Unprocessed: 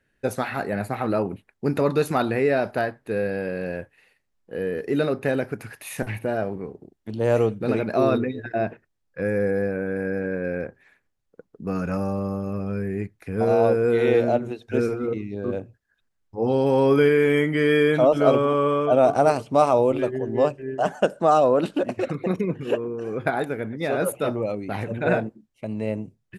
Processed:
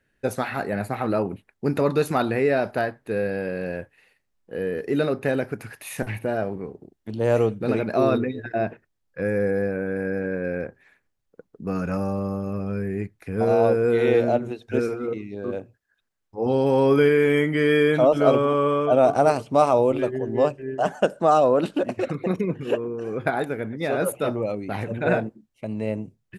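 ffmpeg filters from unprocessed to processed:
-filter_complex "[0:a]asettb=1/sr,asplit=3[s0][s1][s2];[s0]atrim=end=14.794[s3];[s1]atrim=start=14.79:end=16.46,asetpts=PTS-STARTPTS,afade=t=in:d=0.004:c=qsin,afade=t=out:st=1.666:d=0.004:c=qsin,lowshelf=f=200:g=-7.5[s4];[s2]atrim=start=16.456[s5];[s3][s4]acrossfade=d=0.004:c1=hsin:c2=qsin[s6];[s6][s5]acrossfade=d=0.004:c1=qsin:c2=hsin"

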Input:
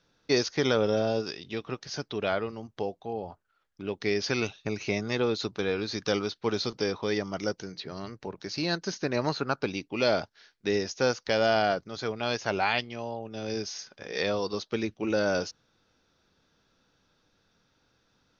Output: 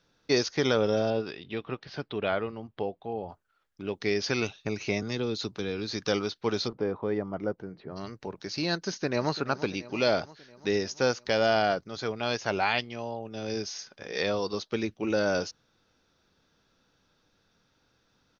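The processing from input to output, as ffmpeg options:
-filter_complex "[0:a]asettb=1/sr,asplit=3[s0][s1][s2];[s0]atrim=end=1.104[s3];[s1]atrim=start=1.1:end=3.29,asetpts=PTS-STARTPTS,afade=t=in:d=0.004:c=qsin,afade=t=out:st=2.186:d=0.004:c=qsin,lowpass=f=3800:w=0.5412,lowpass=f=3800:w=1.3066[s4];[s2]atrim=start=3.286[s5];[s3][s4]acrossfade=d=0.004:c1=hsin:c2=qsin[s6];[s6][s5]acrossfade=d=0.004:c1=qsin:c2=hsin,asettb=1/sr,asplit=3[s7][s8][s9];[s7]atrim=end=5.024[s10];[s8]atrim=start=5.02:end=5.93,asetpts=PTS-STARTPTS,afade=t=in:d=0.004:c=qsin,afade=t=out:st=0.906:d=0.004:c=qsin,acrossover=split=370|3000[s11][s12][s13];[s12]acompressor=threshold=0.00708:ratio=2:attack=3.2:release=140:knee=2.83:detection=peak[s14];[s11][s14][s13]amix=inputs=3:normalize=0[s15];[s9]atrim=start=5.926[s16];[s10][s15]acrossfade=d=0.004:c1=hsin:c2=qsin[s17];[s17][s16]acrossfade=d=0.004:c1=qsin:c2=hsin,asplit=3[s18][s19][s20];[s18]afade=t=out:st=6.67:d=0.02[s21];[s19]lowpass=1200,afade=t=in:st=6.67:d=0.02,afade=t=out:st=7.95:d=0.02[s22];[s20]afade=t=in:st=7.95:d=0.02[s23];[s21][s22][s23]amix=inputs=3:normalize=0,asplit=2[s24][s25];[s25]afade=t=in:st=8.86:d=0.01,afade=t=out:st=9.36:d=0.01,aecho=0:1:340|680|1020|1360|1700|2040|2380:0.177828|0.115588|0.0751323|0.048836|0.0317434|0.0206332|0.0134116[s26];[s24][s26]amix=inputs=2:normalize=0"

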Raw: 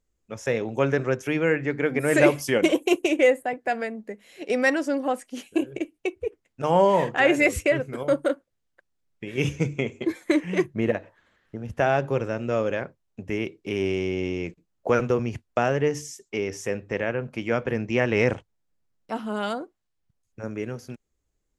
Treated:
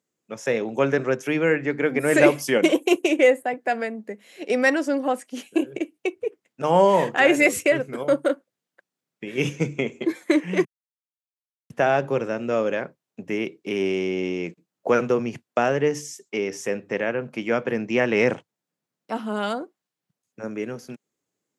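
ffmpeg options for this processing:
-filter_complex "[0:a]asettb=1/sr,asplit=3[s0][s1][s2];[s0]atrim=end=6.744[s3];[s1]atrim=start=6.74:end=7.82,asetpts=PTS-STARTPTS,afade=t=in:d=0.004:c=qsin,afade=t=out:st=1.076:d=0.004:c=qsin,highshelf=f=6500:g=6[s4];[s2]atrim=start=7.816[s5];[s3][s4]acrossfade=d=0.004:c1=hsin:c2=qsin[s6];[s6][s5]acrossfade=d=0.004:c1=qsin:c2=hsin,asplit=3[s7][s8][s9];[s7]atrim=end=10.65,asetpts=PTS-STARTPTS,afade=t=out:st=10.646:d=0.004:c=hsin[s10];[s8]atrim=start=10.65:end=11.7,asetpts=PTS-STARTPTS,volume=0[s11];[s9]atrim=start=11.7,asetpts=PTS-STARTPTS,afade=t=in:d=0.004:c=hsin[s12];[s10][s11][s12]concat=n=3:v=0:a=1,highpass=f=150:w=0.5412,highpass=f=150:w=1.3066,volume=1.26"

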